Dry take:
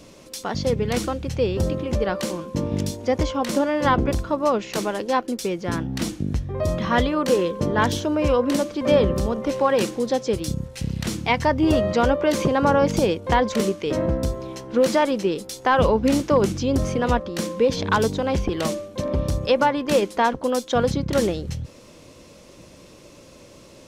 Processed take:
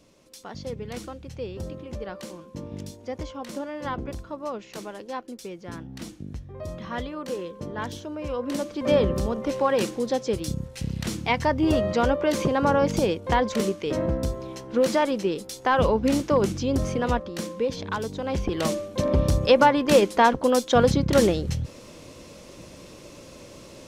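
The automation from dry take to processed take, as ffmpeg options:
-af "volume=2.99,afade=t=in:st=8.28:d=0.63:silence=0.354813,afade=t=out:st=16.97:d=1.08:silence=0.421697,afade=t=in:st=18.05:d=0.97:silence=0.237137"

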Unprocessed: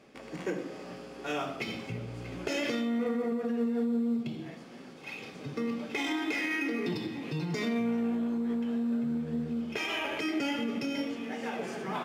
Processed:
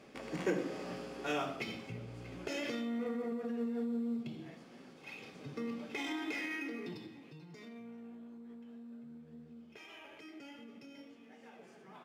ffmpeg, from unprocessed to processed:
-af "volume=1.06,afade=t=out:st=0.99:d=0.83:silence=0.421697,afade=t=out:st=6.36:d=1.03:silence=0.223872"

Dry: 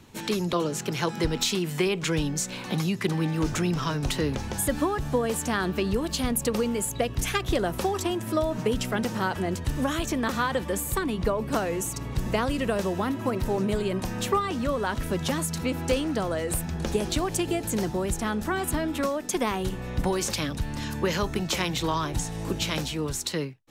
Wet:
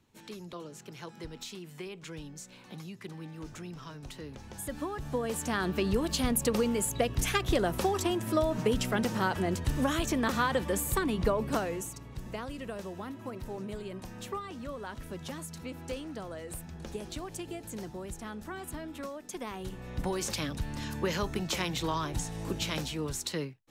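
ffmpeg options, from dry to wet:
-af "volume=2,afade=t=in:st=4.29:d=0.61:silence=0.446684,afade=t=in:st=4.9:d=1.09:silence=0.398107,afade=t=out:st=11.38:d=0.64:silence=0.281838,afade=t=in:st=19.45:d=0.91:silence=0.398107"

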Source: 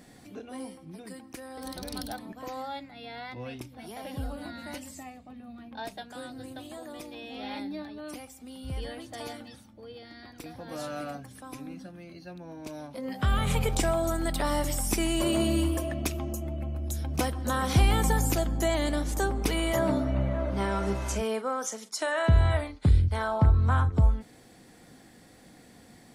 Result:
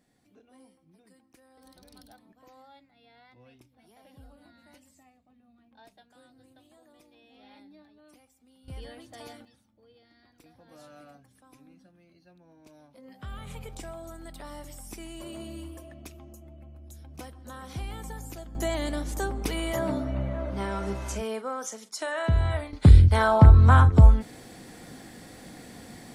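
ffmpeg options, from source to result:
-af "asetnsamples=n=441:p=0,asendcmd='8.68 volume volume -6dB;9.45 volume volume -14.5dB;18.55 volume volume -2.5dB;22.73 volume volume 8dB',volume=0.141"

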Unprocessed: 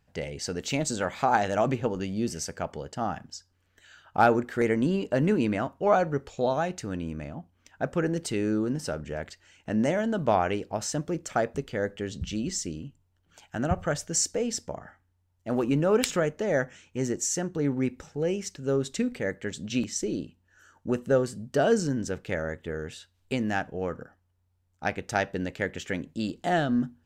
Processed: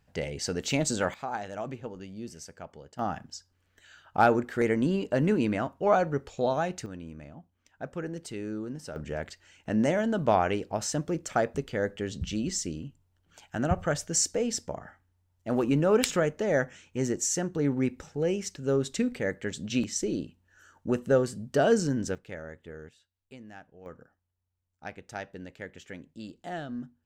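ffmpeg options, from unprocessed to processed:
-af "asetnsamples=n=441:p=0,asendcmd='1.14 volume volume -11dB;2.99 volume volume -1dB;6.86 volume volume -8.5dB;8.96 volume volume 0dB;22.15 volume volume -10dB;22.89 volume volume -19dB;23.86 volume volume -11.5dB',volume=1.12"

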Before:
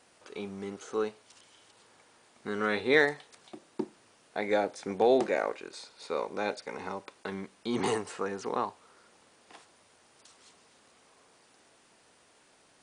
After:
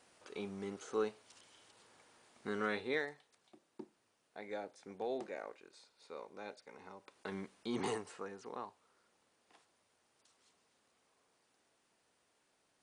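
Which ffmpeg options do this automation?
-af "volume=2.11,afade=t=out:st=2.48:d=0.55:silence=0.266073,afade=t=in:st=6.98:d=0.39:silence=0.281838,afade=t=out:st=7.37:d=1.01:silence=0.354813"

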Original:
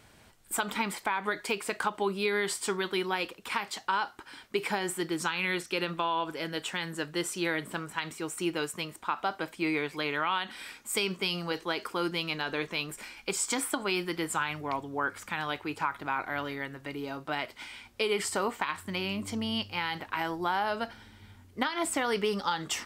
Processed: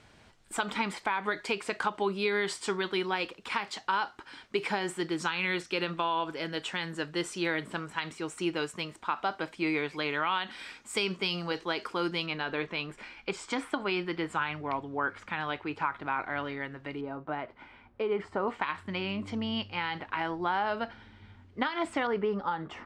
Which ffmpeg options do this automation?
-af "asetnsamples=n=441:p=0,asendcmd='12.26 lowpass f 3300;17.01 lowpass f 1300;18.48 lowpass f 3300;22.07 lowpass f 1400',lowpass=6200"

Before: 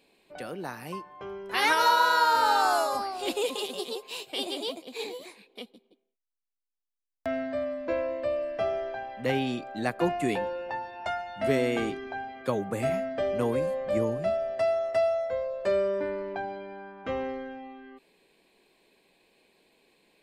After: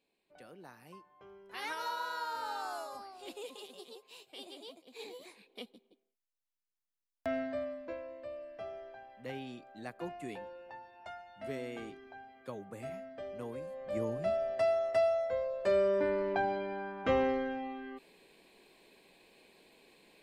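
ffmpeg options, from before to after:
-af "volume=5.01,afade=t=in:st=4.82:d=0.79:silence=0.251189,afade=t=out:st=7.39:d=0.6:silence=0.281838,afade=t=in:st=13.69:d=0.73:silence=0.266073,afade=t=in:st=15.66:d=0.84:silence=0.473151"

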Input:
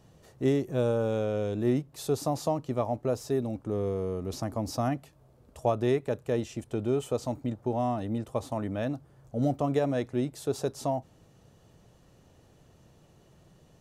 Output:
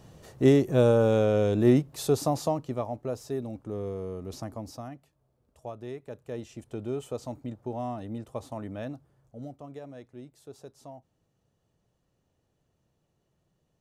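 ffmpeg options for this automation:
-af "volume=5.01,afade=t=out:st=1.74:d=1.16:silence=0.316228,afade=t=out:st=4.42:d=0.46:silence=0.354813,afade=t=in:st=5.95:d=0.79:silence=0.398107,afade=t=out:st=8.81:d=0.71:silence=0.281838"

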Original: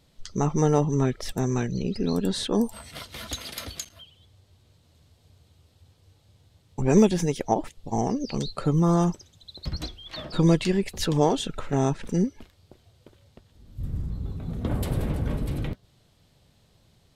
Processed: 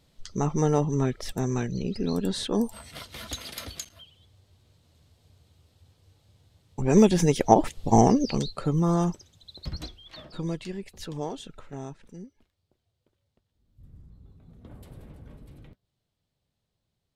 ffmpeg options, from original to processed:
-af "volume=2.82,afade=t=in:st=6.88:d=1.04:silence=0.281838,afade=t=out:st=7.92:d=0.59:silence=0.266073,afade=t=out:st=9.61:d=0.81:silence=0.334965,afade=t=out:st=11.5:d=0.68:silence=0.421697"

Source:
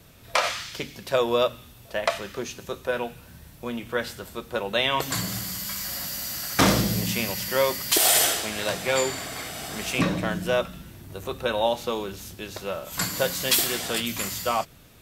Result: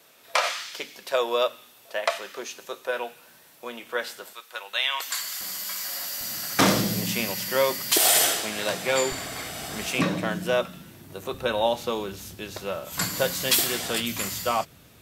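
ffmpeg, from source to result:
-af "asetnsamples=n=441:p=0,asendcmd='4.33 highpass f 1300;5.41 highpass f 440;6.21 highpass f 140;9.12 highpass f 41;9.87 highpass f 140;11.34 highpass f 62',highpass=460"

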